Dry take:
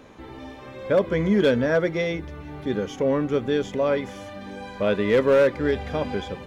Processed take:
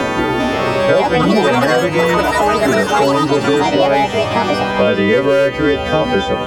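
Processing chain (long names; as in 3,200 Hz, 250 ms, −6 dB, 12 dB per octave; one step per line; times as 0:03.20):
every partial snapped to a pitch grid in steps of 2 semitones
high-shelf EQ 4,200 Hz −11.5 dB
in parallel at +2.5 dB: brickwall limiter −20 dBFS, peak gain reduction 11.5 dB
on the sum: delay with pitch and tempo change per echo 400 ms, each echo +7 semitones, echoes 3
on a send: feedback echo with a band-pass in the loop 397 ms, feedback 67%, band-pass 2,600 Hz, level −11.5 dB
on the sum: multiband upward and downward compressor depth 100%
level +3 dB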